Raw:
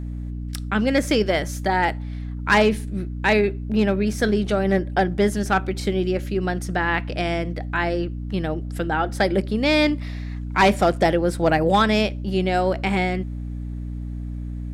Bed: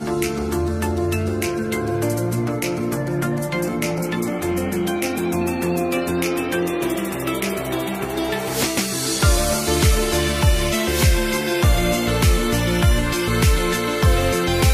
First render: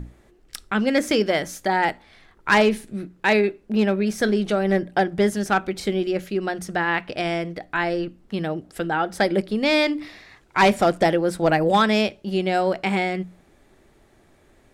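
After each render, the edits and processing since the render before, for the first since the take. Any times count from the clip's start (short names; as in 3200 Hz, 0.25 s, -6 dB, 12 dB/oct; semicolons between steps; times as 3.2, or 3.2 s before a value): notches 60/120/180/240/300 Hz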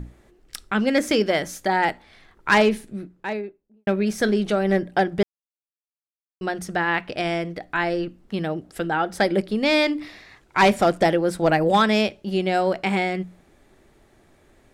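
2.57–3.87 studio fade out; 5.23–6.41 mute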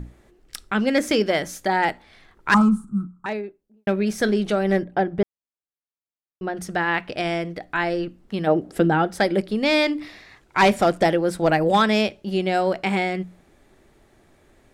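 2.54–3.26 EQ curve 130 Hz 0 dB, 200 Hz +10 dB, 320 Hz -9 dB, 520 Hz -24 dB, 1300 Hz +14 dB, 1800 Hz -29 dB, 5200 Hz -16 dB, 8200 Hz 0 dB, 12000 Hz -14 dB; 4.84–6.57 LPF 1200 Hz 6 dB/oct; 8.46–9.06 bell 730 Hz -> 120 Hz +11 dB 2.7 oct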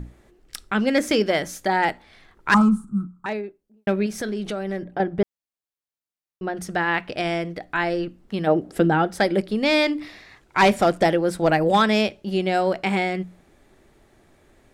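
4.06–5 compressor 2.5:1, threshold -27 dBFS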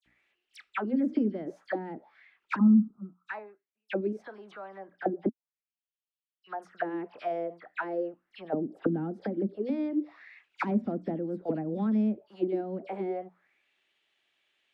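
dispersion lows, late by 61 ms, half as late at 2800 Hz; auto-wah 240–3100 Hz, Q 4.3, down, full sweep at -17 dBFS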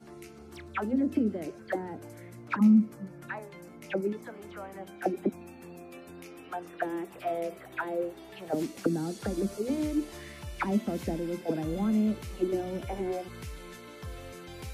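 add bed -25.5 dB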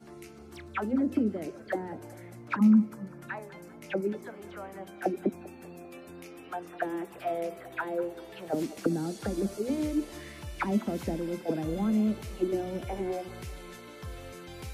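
band-limited delay 0.197 s, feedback 54%, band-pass 810 Hz, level -16 dB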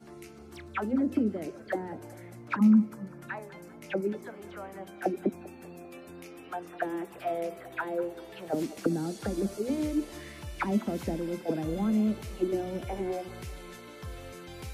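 nothing audible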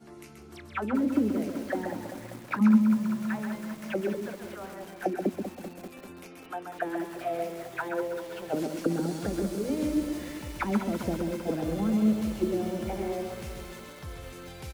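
echo 0.131 s -6 dB; lo-fi delay 0.195 s, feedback 80%, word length 7-bit, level -10 dB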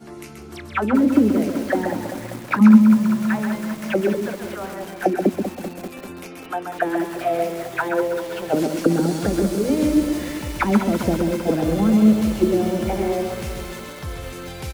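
gain +10 dB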